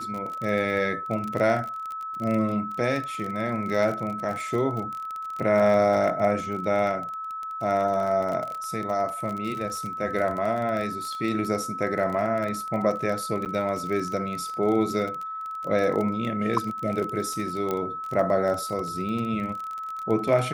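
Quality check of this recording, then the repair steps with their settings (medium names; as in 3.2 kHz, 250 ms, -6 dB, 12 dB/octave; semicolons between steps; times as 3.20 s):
crackle 27 per s -29 dBFS
whine 1.3 kHz -31 dBFS
13.45–13.46 s: dropout 8.9 ms
17.71 s: pop -14 dBFS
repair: de-click; band-stop 1.3 kHz, Q 30; interpolate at 13.45 s, 8.9 ms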